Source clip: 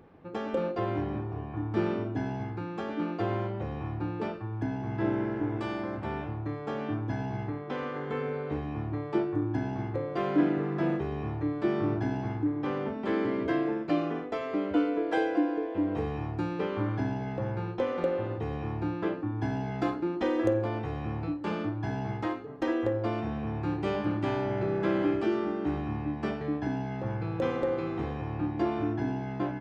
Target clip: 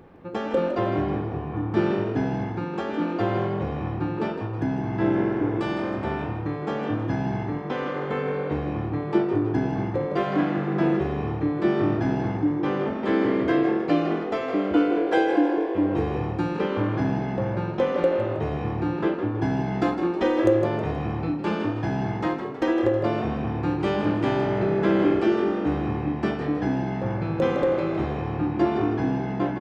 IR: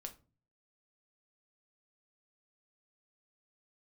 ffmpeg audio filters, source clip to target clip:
-filter_complex "[0:a]asettb=1/sr,asplit=3[a][b][c];[a]atrim=end=10.234[d];[b]atrim=start=10.23:end=10.68,asetpts=PTS-STARTPTS,afade=t=in:d=0.004:c=qsin,afade=t=out:st=0.446:d=0.004:c=qsin,equalizer=f=370:t=o:w=0.52:g=-12.5[e];[c]atrim=start=10.676[f];[d][e]acrossfade=d=0.004:c1=hsin:c2=qsin[g];[g][f]acrossfade=d=0.004:c1=qsin:c2=hsin,asplit=6[h][i][j][k][l][m];[i]adelay=159,afreqshift=45,volume=-9.5dB[n];[j]adelay=318,afreqshift=90,volume=-16.6dB[o];[k]adelay=477,afreqshift=135,volume=-23.8dB[p];[l]adelay=636,afreqshift=180,volume=-30.9dB[q];[m]adelay=795,afreqshift=225,volume=-38dB[r];[h][n][o][p][q][r]amix=inputs=6:normalize=0,asplit=2[s][t];[1:a]atrim=start_sample=2205[u];[t][u]afir=irnorm=-1:irlink=0,volume=-1dB[v];[s][v]amix=inputs=2:normalize=0,volume=2.5dB"

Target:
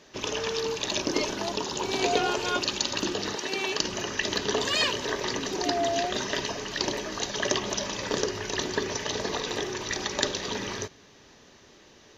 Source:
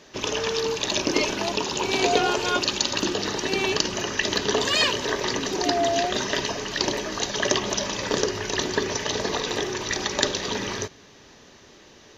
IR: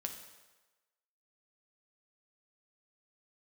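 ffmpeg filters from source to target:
-filter_complex "[0:a]asettb=1/sr,asplit=3[a][b][c];[a]atrim=end=1.024[d];[b]atrim=start=1.02:end=2.01,asetpts=PTS-STARTPTS,afade=t=in:d=0.004:c=qsin,afade=t=out:st=0.986:d=0.004:c=qsin,equalizer=f=2.5k:t=o:w=0.43:g=-5.5[e];[c]atrim=start=2.006[f];[d][e]acrossfade=d=0.004:c1=hsin:c2=qsin[g];[g][f]acrossfade=d=0.004:c1=qsin:c2=hsin,asettb=1/sr,asplit=3[h][i][j];[h]atrim=end=3.354[k];[i]atrim=start=3.35:end=3.79,asetpts=PTS-STARTPTS,afade=t=in:d=0.004:c=qsin,afade=t=out:st=0.436:d=0.004:c=qsin,highpass=f=390:p=1[l];[j]atrim=start=3.786[m];[k][l]acrossfade=d=0.004:c1=hsin:c2=qsin[n];[n][m]acrossfade=d=0.004:c1=qsin:c2=hsin,volume=-4dB"

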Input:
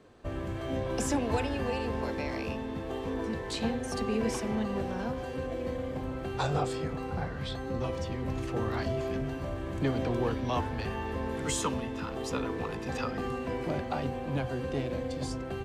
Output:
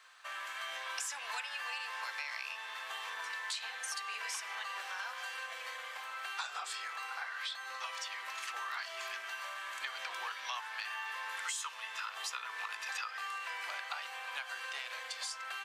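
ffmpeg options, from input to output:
-af "highpass=f=1.2k:w=0.5412,highpass=f=1.2k:w=1.3066,acompressor=threshold=-45dB:ratio=6,volume=8dB"

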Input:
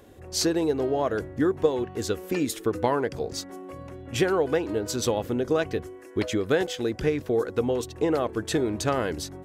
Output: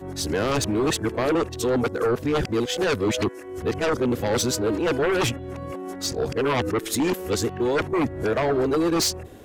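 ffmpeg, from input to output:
-af "areverse,aeval=exprs='0.355*sin(PI/2*3.98*val(0)/0.355)':c=same,volume=-9dB"

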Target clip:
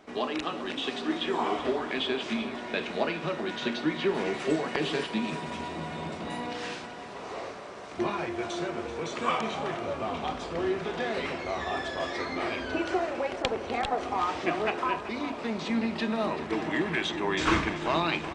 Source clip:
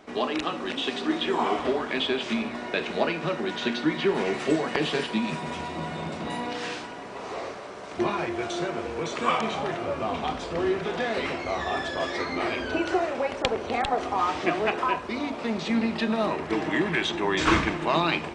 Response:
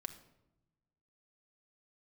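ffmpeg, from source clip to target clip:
-af "aecho=1:1:384|768|1152|1536|1920|2304:0.2|0.114|0.0648|0.037|0.0211|0.012,volume=-3.5dB"

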